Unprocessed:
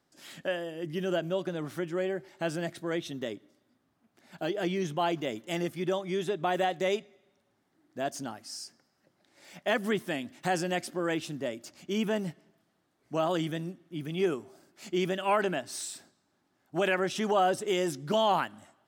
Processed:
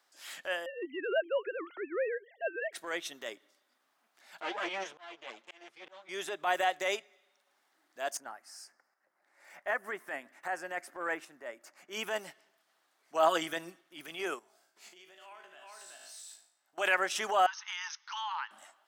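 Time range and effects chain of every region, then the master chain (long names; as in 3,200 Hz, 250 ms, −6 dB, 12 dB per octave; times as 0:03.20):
0:00.66–0:02.73: three sine waves on the formant tracks + low-shelf EQ 340 Hz +12 dB
0:04.40–0:06.09: lower of the sound and its delayed copy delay 8.7 ms + volume swells 753 ms + high-frequency loss of the air 100 metres
0:08.17–0:11.93: drawn EQ curve 1,900 Hz 0 dB, 3,300 Hz −16 dB, 10,000 Hz −8 dB + shaped tremolo saw up 1.3 Hz, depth 50%
0:13.14–0:13.81: high-pass filter 49 Hz + comb filter 6.1 ms, depth 97%
0:14.39–0:16.78: tuned comb filter 54 Hz, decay 0.61 s, mix 80% + single-tap delay 375 ms −6 dB + downward compressor 16 to 1, threshold −49 dBFS
0:17.46–0:18.51: linear-phase brick-wall band-pass 810–6,500 Hz + downward compressor 4 to 1, threshold −37 dBFS
whole clip: high-pass filter 850 Hz 12 dB per octave; dynamic equaliser 3,800 Hz, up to −5 dB, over −52 dBFS, Q 1.4; transient designer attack −7 dB, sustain −3 dB; level +6 dB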